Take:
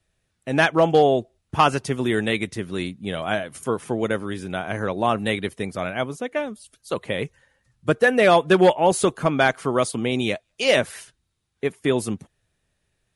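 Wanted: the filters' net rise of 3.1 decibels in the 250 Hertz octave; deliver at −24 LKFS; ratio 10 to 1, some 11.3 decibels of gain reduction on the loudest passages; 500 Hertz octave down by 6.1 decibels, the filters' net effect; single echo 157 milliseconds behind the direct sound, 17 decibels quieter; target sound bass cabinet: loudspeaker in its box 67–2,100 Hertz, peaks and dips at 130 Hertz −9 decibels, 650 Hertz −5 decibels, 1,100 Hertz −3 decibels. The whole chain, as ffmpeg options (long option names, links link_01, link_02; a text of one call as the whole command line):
ffmpeg -i in.wav -af "equalizer=frequency=250:width_type=o:gain=7.5,equalizer=frequency=500:width_type=o:gain=-8.5,acompressor=threshold=-24dB:ratio=10,highpass=frequency=67:width=0.5412,highpass=frequency=67:width=1.3066,equalizer=frequency=130:width_type=q:width=4:gain=-9,equalizer=frequency=650:width_type=q:width=4:gain=-5,equalizer=frequency=1100:width_type=q:width=4:gain=-3,lowpass=frequency=2100:width=0.5412,lowpass=frequency=2100:width=1.3066,aecho=1:1:157:0.141,volume=8dB" out.wav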